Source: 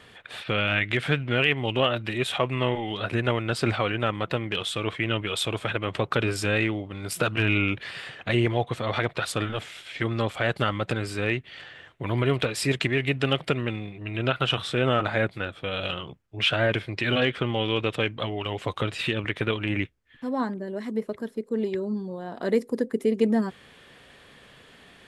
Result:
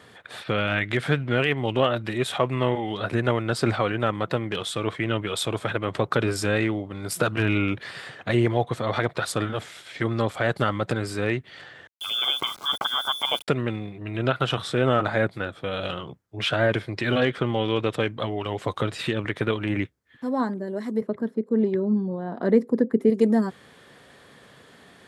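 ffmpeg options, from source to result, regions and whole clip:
ffmpeg -i in.wav -filter_complex "[0:a]asettb=1/sr,asplit=3[link_01][link_02][link_03];[link_01]atrim=end=11.874[link_04];[link_02]atrim=start=11.87:end=13.48,asetpts=PTS-STARTPTS,afade=type=in:duration=0.004:curve=qsin,afade=type=out:start_time=1.606:duration=0.004:curve=qsin,lowpass=frequency=3100:width_type=q:width=0.5098,lowpass=frequency=3100:width_type=q:width=0.6013,lowpass=frequency=3100:width_type=q:width=0.9,lowpass=frequency=3100:width_type=q:width=2.563,afreqshift=-3600,aeval=exprs='val(0)*gte(abs(val(0)),0.0133)':channel_layout=same,asuperstop=centerf=1800:order=4:qfactor=3.9[link_05];[link_03]atrim=start=13.476[link_06];[link_04][link_05]acrossfade=duration=0.004:curve1=hsin:curve2=qsin[link_07];[link_07][link_06]acrossfade=duration=0.004:curve1=qsin:curve2=hsin,asettb=1/sr,asplit=3[link_08][link_09][link_10];[link_08]atrim=end=21.014[link_11];[link_09]atrim=start=21.01:end=23.1,asetpts=PTS-STARTPTS,afade=type=in:duration=0.004:curve=qsin,afade=type=out:start_time=2.086:duration=0.004:curve=qsin,highpass=160,bass=frequency=250:gain=9,treble=frequency=4000:gain=-14[link_12];[link_10]atrim=start=23.096[link_13];[link_11][link_12]acrossfade=duration=0.004:curve1=hsin:curve2=qsin[link_14];[link_14][link_13]acrossfade=duration=0.004:curve1=qsin:curve2=hsin,highpass=89,equalizer=frequency=2700:width=1.9:gain=-8,volume=2.5dB" out.wav

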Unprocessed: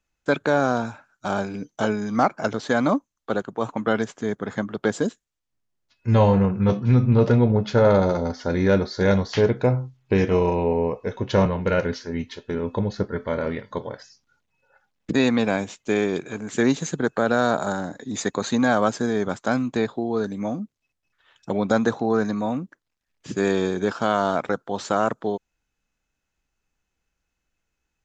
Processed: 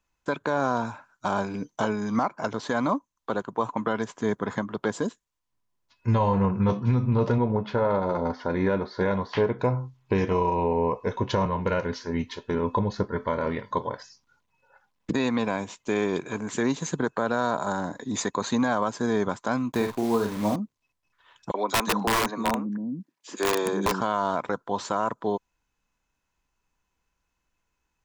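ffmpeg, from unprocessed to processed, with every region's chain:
ffmpeg -i in.wav -filter_complex "[0:a]asettb=1/sr,asplit=3[link_01][link_02][link_03];[link_01]atrim=end=7.384[link_04];[link_02]atrim=start=7.38:end=9.59,asetpts=PTS-STARTPTS,afade=type=in:duration=0.004:curve=qsin,afade=type=out:start_time=2.206:duration=0.004:curve=qsin,lowpass=3000,lowshelf=frequency=86:gain=-10.5[link_05];[link_03]atrim=start=9.586[link_06];[link_04][link_05]acrossfade=duration=0.004:curve1=hsin:curve2=qsin[link_07];[link_07][link_06]acrossfade=duration=0.004:curve1=qsin:curve2=hsin,asettb=1/sr,asplit=3[link_08][link_09][link_10];[link_08]atrim=end=19.724[link_11];[link_09]atrim=start=19.72:end=20.56,asetpts=PTS-STARTPTS,afade=type=in:duration=0.004:curve=qsin,afade=type=out:start_time=0.836:duration=0.004:curve=qsin,lowshelf=frequency=68:gain=8,acrusher=bits=7:dc=4:mix=0:aa=0.000001,asplit=2[link_12][link_13];[link_13]adelay=48,volume=-7dB[link_14];[link_12][link_14]amix=inputs=2:normalize=0,atrim=end_sample=37044[link_15];[link_10]atrim=start=20.556[link_16];[link_11][link_15]acrossfade=duration=0.004:curve1=hsin:curve2=qsin[link_17];[link_17][link_16]acrossfade=duration=0.004:curve1=qsin:curve2=hsin,asettb=1/sr,asplit=3[link_18][link_19][link_20];[link_18]atrim=end=21.514[link_21];[link_19]atrim=start=21.51:end=24.01,asetpts=PTS-STARTPTS,afade=type=in:duration=0.004:curve=qsin,afade=type=out:start_time=2.496:duration=0.004:curve=qsin,highpass=frequency=170:width=0.5412,highpass=frequency=170:width=1.3066,acrossover=split=290|2500[link_22][link_23][link_24];[link_23]adelay=30[link_25];[link_22]adelay=360[link_26];[link_26][link_25][link_24]amix=inputs=3:normalize=0,atrim=end_sample=110250,aeval=exprs='(mod(6.68*val(0)+1,2)-1)/6.68':channel_layout=same[link_27];[link_20]atrim=start=24.006[link_28];[link_21][link_27]acrossfade=duration=0.004:curve1=hsin:curve2=qsin[link_29];[link_29][link_28]acrossfade=duration=0.004:curve1=qsin:curve2=hsin,equalizer=frequency=1000:width=6:gain=12,alimiter=limit=-14dB:level=0:latency=1:release=324" out.wav

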